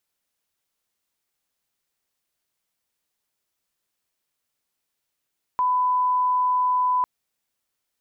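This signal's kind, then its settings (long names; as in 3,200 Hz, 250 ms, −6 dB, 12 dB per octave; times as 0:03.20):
line-up tone −18 dBFS 1.45 s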